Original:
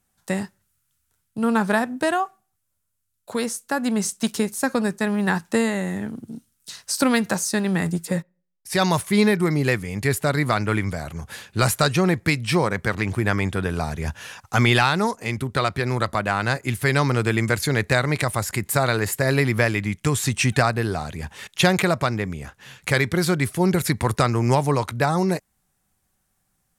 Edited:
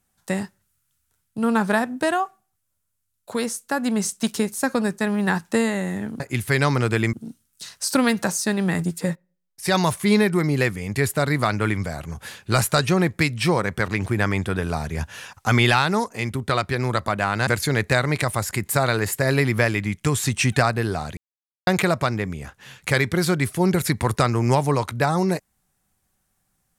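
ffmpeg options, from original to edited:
-filter_complex "[0:a]asplit=6[a][b][c][d][e][f];[a]atrim=end=6.202[g];[b]atrim=start=16.538:end=17.472[h];[c]atrim=start=6.198:end=16.542[i];[d]atrim=start=17.468:end=21.17,asetpts=PTS-STARTPTS,afade=t=out:st=3.698:d=0.004:c=hsin[j];[e]atrim=start=21.17:end=21.67,asetpts=PTS-STARTPTS,volume=0[k];[f]atrim=start=21.67,asetpts=PTS-STARTPTS,afade=t=in:d=0.004:c=hsin[l];[g][h]acrossfade=d=0.004:c1=hsin:c2=hsin[m];[m][i]acrossfade=d=0.004:c1=hsin:c2=hsin[n];[j][k][l]concat=n=3:v=0:a=1[o];[n][o]acrossfade=d=0.004:c1=hsin:c2=hsin"

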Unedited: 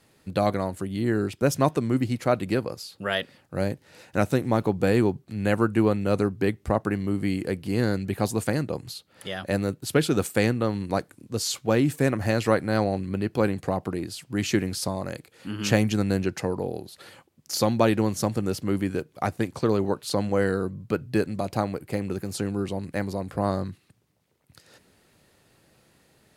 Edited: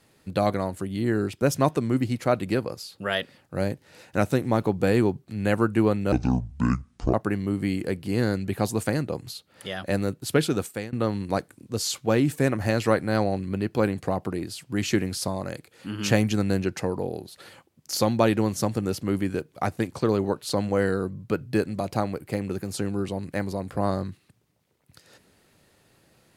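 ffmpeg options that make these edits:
-filter_complex "[0:a]asplit=4[a][b][c][d];[a]atrim=end=6.124[e];[b]atrim=start=6.12:end=6.74,asetpts=PTS-STARTPTS,asetrate=26901,aresample=44100[f];[c]atrim=start=6.736:end=10.53,asetpts=PTS-STARTPTS,afade=t=out:st=3.294:d=0.5:silence=0.0794328[g];[d]atrim=start=10.53,asetpts=PTS-STARTPTS,afade=t=in:d=0.004:c=hsin:silence=0.0794328[h];[e][f]acrossfade=d=0.004:c1=hsin:c2=hsin[i];[g][h]concat=n=2:v=0:a=1[j];[i][j]acrossfade=d=0.004:c1=hsin:c2=hsin"

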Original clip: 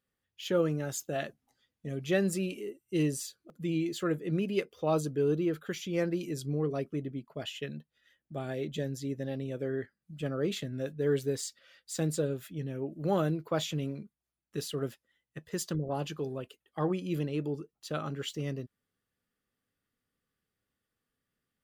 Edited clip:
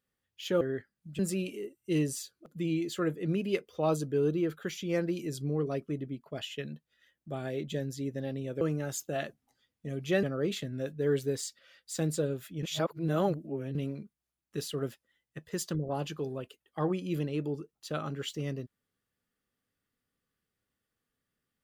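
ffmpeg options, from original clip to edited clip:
-filter_complex "[0:a]asplit=7[a][b][c][d][e][f][g];[a]atrim=end=0.612[h];[b]atrim=start=9.648:end=10.232[i];[c]atrim=start=2.228:end=9.652[j];[d]atrim=start=0.608:end=2.232[k];[e]atrim=start=10.228:end=12.632[l];[f]atrim=start=12.628:end=13.752,asetpts=PTS-STARTPTS,areverse[m];[g]atrim=start=13.748[n];[h][i]acrossfade=d=0.004:c1=hsin:c2=hsin[o];[o][j]acrossfade=d=0.004:c1=hsin:c2=hsin[p];[p][k]acrossfade=d=0.004:c1=hsin:c2=hsin[q];[q][l]acrossfade=d=0.004:c1=hsin:c2=hsin[r];[r][m]acrossfade=d=0.004:c1=hsin:c2=hsin[s];[s][n]acrossfade=d=0.004:c1=hsin:c2=hsin"

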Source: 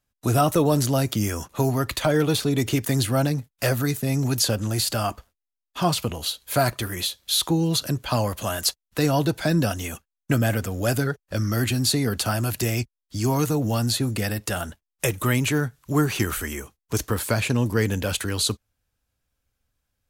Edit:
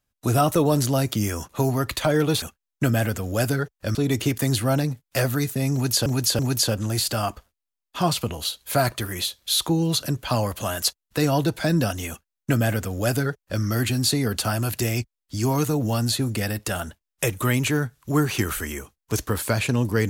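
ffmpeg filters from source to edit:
-filter_complex "[0:a]asplit=5[a][b][c][d][e];[a]atrim=end=2.422[f];[b]atrim=start=9.898:end=11.432[g];[c]atrim=start=2.418:end=4.532[h];[d]atrim=start=4.198:end=4.532[i];[e]atrim=start=4.198[j];[f][g]acrossfade=d=0.004:c1=hsin:c2=hsin[k];[k][h]acrossfade=d=0.004:c1=hsin:c2=hsin[l];[l][i]acrossfade=d=0.004:c1=hsin:c2=hsin[m];[m][j]acrossfade=d=0.004:c1=hsin:c2=hsin"

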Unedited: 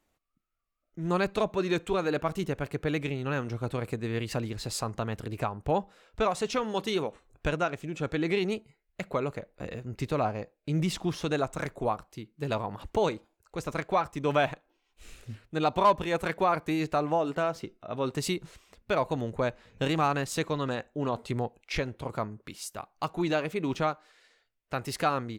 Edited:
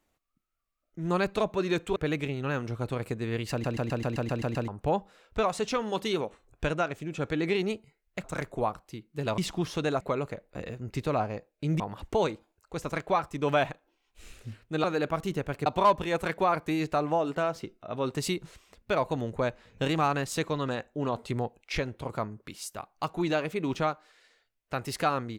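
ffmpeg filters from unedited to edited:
-filter_complex "[0:a]asplit=17[a][b][c][d][e][f][g][h][i][j][k][l][m][n][o][p][q];[a]atrim=end=1.962[r];[b]atrim=start=2.778:end=4.462[s];[c]atrim=start=4.328:end=4.462[t];[d]atrim=start=4.328:end=4.462[u];[e]atrim=start=4.328:end=4.462[v];[f]atrim=start=4.328:end=4.462[w];[g]atrim=start=4.328:end=4.462[x];[h]atrim=start=4.328:end=4.462[y];[i]atrim=start=4.328:end=4.462[z];[j]atrim=start=4.328:end=4.462[aa];[k]atrim=start=5.498:end=9.062[ab];[l]atrim=start=11.478:end=12.622[ac];[m]atrim=start=10.848:end=11.482[ad];[n]atrim=start=9.058:end=10.852[ae];[o]atrim=start=12.618:end=15.662[af];[p]atrim=start=1.958:end=2.782[ag];[q]atrim=start=15.658[ah];[r][s]acrossfade=d=0.004:c1=hsin:c2=hsin[ai];[ai][t]acrossfade=d=0.004:c1=hsin:c2=hsin[aj];[aj][u]acrossfade=d=0.004:c1=hsin:c2=hsin[ak];[ak][v]acrossfade=d=0.004:c1=hsin:c2=hsin[al];[al][w]acrossfade=d=0.004:c1=hsin:c2=hsin[am];[am][x]acrossfade=d=0.004:c1=hsin:c2=hsin[an];[an][y]acrossfade=d=0.004:c1=hsin:c2=hsin[ao];[ao][z]acrossfade=d=0.004:c1=hsin:c2=hsin[ap];[ap][aa]acrossfade=d=0.004:c1=hsin:c2=hsin[aq];[aq][ab]acrossfade=d=0.004:c1=hsin:c2=hsin[ar];[ar][ac]acrossfade=d=0.004:c1=hsin:c2=hsin[as];[as][ad]acrossfade=d=0.004:c1=hsin:c2=hsin[at];[at][ae]acrossfade=d=0.004:c1=hsin:c2=hsin[au];[au][af]acrossfade=d=0.004:c1=hsin:c2=hsin[av];[av][ag]acrossfade=d=0.004:c1=hsin:c2=hsin[aw];[aw][ah]acrossfade=d=0.004:c1=hsin:c2=hsin"

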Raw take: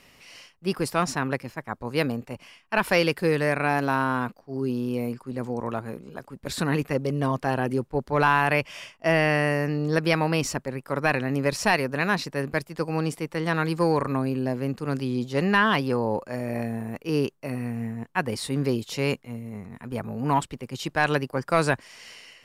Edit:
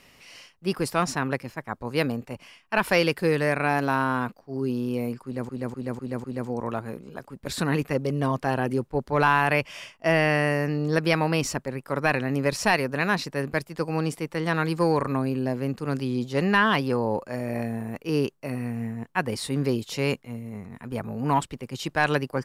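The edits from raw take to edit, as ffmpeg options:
-filter_complex "[0:a]asplit=5[a][b][c][d][e];[a]atrim=end=5.492[f];[b]atrim=start=5.238:end=5.492[g];[c]atrim=start=5.238:end=5.492[h];[d]atrim=start=5.238:end=5.492[i];[e]atrim=start=5.238[j];[f][g]acrossfade=d=0.004:c1=hsin:c2=hsin[k];[k][h]acrossfade=d=0.004:c1=hsin:c2=hsin[l];[l][i]acrossfade=d=0.004:c1=hsin:c2=hsin[m];[m][j]acrossfade=d=0.004:c1=hsin:c2=hsin"

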